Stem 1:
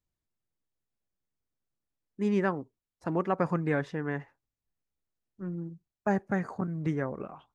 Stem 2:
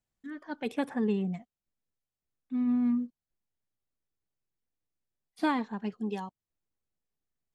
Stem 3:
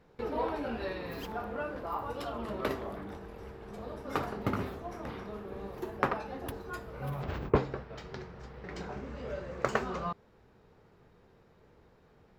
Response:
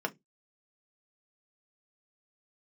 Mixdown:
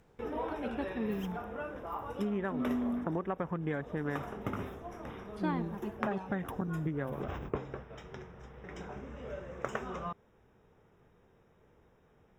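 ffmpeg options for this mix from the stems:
-filter_complex "[0:a]afwtdn=0.00794,volume=0.5dB[link_01];[1:a]lowpass=frequency=2300:poles=1,acompressor=mode=upward:threshold=-47dB:ratio=2.5,volume=-6.5dB[link_02];[2:a]volume=-3.5dB[link_03];[link_01][link_03]amix=inputs=2:normalize=0,asuperstop=centerf=4400:order=8:qfactor=3.3,acompressor=threshold=-30dB:ratio=12,volume=0dB[link_04];[link_02][link_04]amix=inputs=2:normalize=0"

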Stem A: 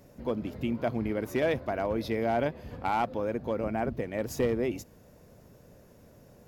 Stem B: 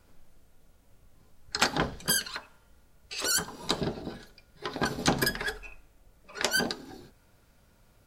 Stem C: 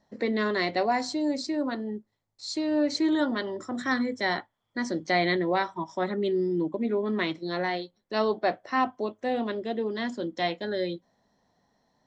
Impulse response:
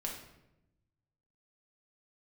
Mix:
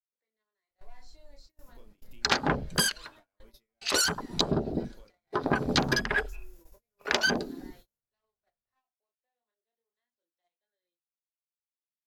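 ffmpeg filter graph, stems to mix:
-filter_complex "[0:a]acompressor=threshold=-43dB:ratio=2,crystalizer=i=8:c=0,adelay=1500,volume=-12.5dB[link_01];[1:a]afwtdn=0.02,acontrast=69,adelay=700,volume=2dB[link_02];[2:a]highpass=670,asoftclip=type=tanh:threshold=-27dB,volume=-18dB[link_03];[link_01][link_03]amix=inputs=2:normalize=0,flanger=delay=22.5:depth=7.1:speed=0.28,acompressor=threshold=-54dB:ratio=10,volume=0dB[link_04];[link_02][link_04]amix=inputs=2:normalize=0,agate=range=-31dB:threshold=-52dB:ratio=16:detection=peak,acompressor=threshold=-22dB:ratio=6"

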